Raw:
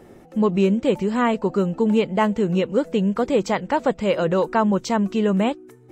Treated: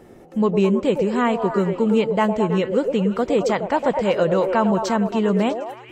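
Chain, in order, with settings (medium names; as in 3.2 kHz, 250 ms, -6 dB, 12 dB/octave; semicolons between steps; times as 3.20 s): repeats whose band climbs or falls 108 ms, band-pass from 510 Hz, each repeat 0.7 oct, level -3 dB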